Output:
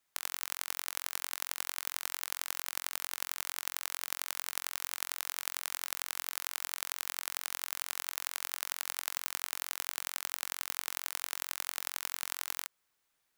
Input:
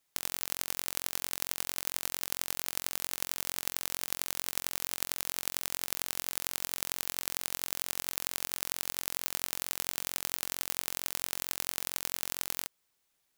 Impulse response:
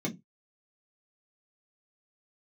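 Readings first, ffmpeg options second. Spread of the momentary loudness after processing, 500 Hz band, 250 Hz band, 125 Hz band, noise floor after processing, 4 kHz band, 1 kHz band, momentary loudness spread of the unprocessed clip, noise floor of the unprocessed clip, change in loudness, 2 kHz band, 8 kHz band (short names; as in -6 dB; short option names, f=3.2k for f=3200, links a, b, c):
1 LU, -7.5 dB, under -15 dB, under -20 dB, -79 dBFS, -2.0 dB, +0.5 dB, 1 LU, -77 dBFS, -2.5 dB, +1.0 dB, -3.0 dB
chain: -filter_complex "[0:a]equalizer=f=1.4k:t=o:w=1.5:g=5.5,acrossover=split=470|5200[a][b][c];[a]aeval=exprs='(mod(158*val(0)+1,2)-1)/158':c=same[d];[d][b][c]amix=inputs=3:normalize=0,volume=-3dB"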